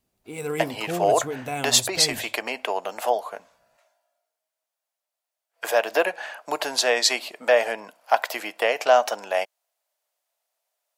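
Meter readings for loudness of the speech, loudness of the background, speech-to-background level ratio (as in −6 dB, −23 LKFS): −23.5 LKFS, −31.5 LKFS, 8.0 dB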